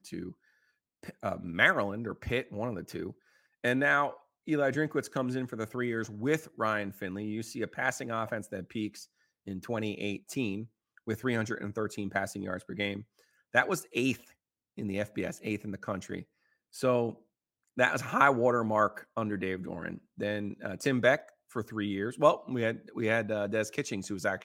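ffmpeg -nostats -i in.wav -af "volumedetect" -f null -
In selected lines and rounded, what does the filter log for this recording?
mean_volume: -32.4 dB
max_volume: -7.8 dB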